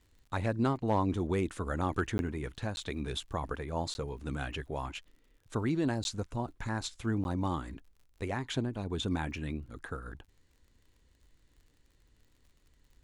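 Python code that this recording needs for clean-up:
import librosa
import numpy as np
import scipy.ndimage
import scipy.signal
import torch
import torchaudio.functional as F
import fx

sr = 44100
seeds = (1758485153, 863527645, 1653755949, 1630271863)

y = fx.fix_declip(x, sr, threshold_db=-19.5)
y = fx.fix_declick_ar(y, sr, threshold=6.5)
y = fx.fix_interpolate(y, sr, at_s=(2.18, 2.76, 3.94, 6.04, 7.24), length_ms=11.0)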